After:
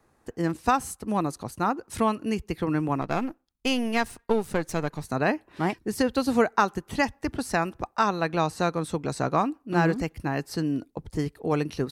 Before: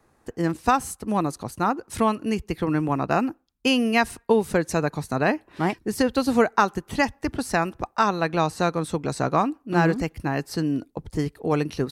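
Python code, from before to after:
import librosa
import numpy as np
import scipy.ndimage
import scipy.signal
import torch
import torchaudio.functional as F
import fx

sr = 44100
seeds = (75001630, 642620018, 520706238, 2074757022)

y = fx.halfwave_gain(x, sr, db=-7.0, at=(3.01, 5.05))
y = F.gain(torch.from_numpy(y), -2.5).numpy()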